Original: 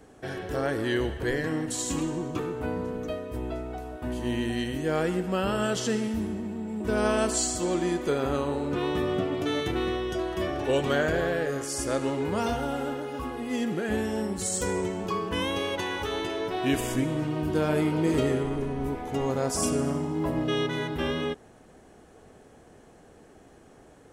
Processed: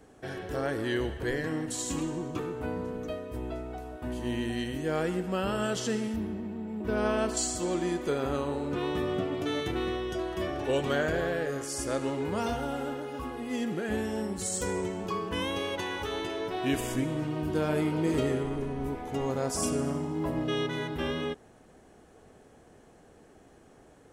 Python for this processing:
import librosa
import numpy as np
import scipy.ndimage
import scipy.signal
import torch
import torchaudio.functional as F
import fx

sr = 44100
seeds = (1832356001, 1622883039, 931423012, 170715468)

y = fx.peak_eq(x, sr, hz=8200.0, db=-12.0, octaves=1.1, at=(6.16, 7.37))
y = F.gain(torch.from_numpy(y), -3.0).numpy()